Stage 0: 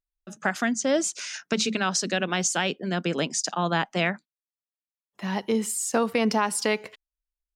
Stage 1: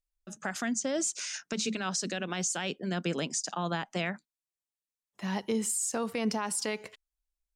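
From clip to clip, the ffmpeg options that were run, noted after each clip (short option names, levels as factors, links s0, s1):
-af "equalizer=f=7900:w=1:g=6.5,alimiter=limit=0.15:level=0:latency=1:release=69,lowshelf=f=83:g=9,volume=0.562"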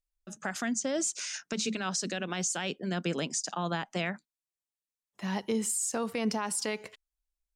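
-af anull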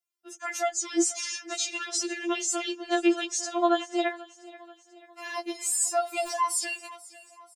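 -filter_complex "[0:a]acrossover=split=160|600|6300[s0][s1][s2][s3];[s0]acrusher=bits=5:mix=0:aa=0.000001[s4];[s4][s1][s2][s3]amix=inputs=4:normalize=0,aecho=1:1:487|974|1461|1948:0.1|0.051|0.026|0.0133,afftfilt=real='re*4*eq(mod(b,16),0)':imag='im*4*eq(mod(b,16),0)':win_size=2048:overlap=0.75,volume=2.11"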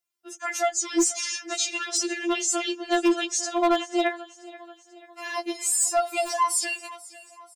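-af "asoftclip=type=hard:threshold=0.112,volume=1.5"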